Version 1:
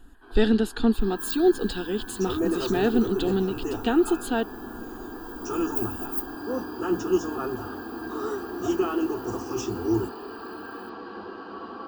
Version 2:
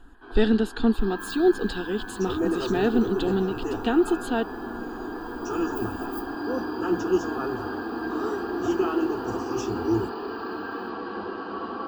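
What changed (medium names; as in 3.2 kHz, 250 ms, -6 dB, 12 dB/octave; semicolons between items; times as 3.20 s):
first sound +5.5 dB; master: add treble shelf 9.3 kHz -12 dB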